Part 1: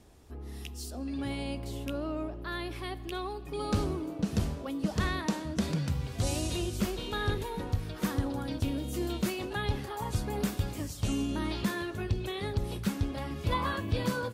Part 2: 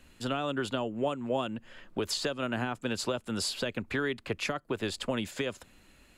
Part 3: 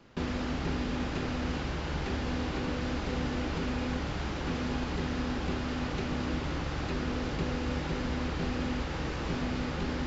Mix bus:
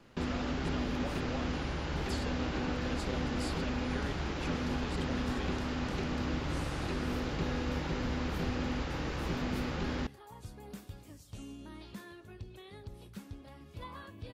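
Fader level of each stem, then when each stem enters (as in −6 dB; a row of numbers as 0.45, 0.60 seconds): −15.5, −13.0, −2.0 decibels; 0.30, 0.00, 0.00 seconds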